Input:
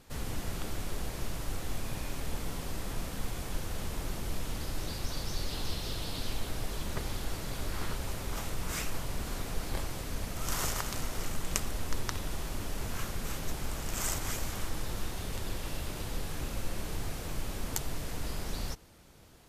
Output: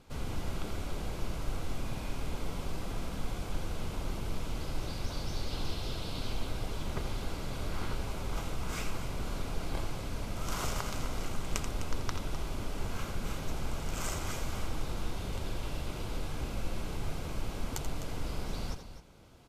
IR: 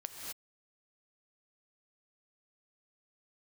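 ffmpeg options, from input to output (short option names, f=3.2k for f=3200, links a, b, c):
-filter_complex "[0:a]lowpass=f=3.7k:p=1,bandreject=f=1.8k:w=6.9,asplit=2[a][b];[b]aecho=0:1:84|255:0.335|0.251[c];[a][c]amix=inputs=2:normalize=0"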